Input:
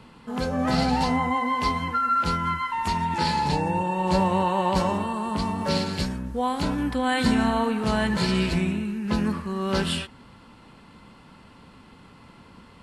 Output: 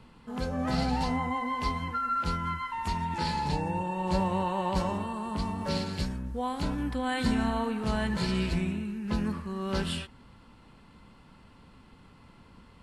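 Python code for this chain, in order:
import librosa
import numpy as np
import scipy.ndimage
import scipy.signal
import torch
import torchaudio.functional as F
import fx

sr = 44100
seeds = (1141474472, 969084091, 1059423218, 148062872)

y = fx.low_shelf(x, sr, hz=72.0, db=11.0)
y = y * librosa.db_to_amplitude(-7.0)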